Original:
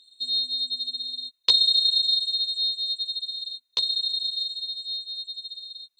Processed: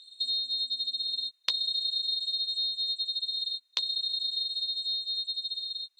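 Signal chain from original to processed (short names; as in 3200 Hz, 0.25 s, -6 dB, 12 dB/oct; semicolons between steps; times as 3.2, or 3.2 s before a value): weighting filter A; compressor 6:1, threshold -31 dBFS, peak gain reduction 17 dB; gain +3 dB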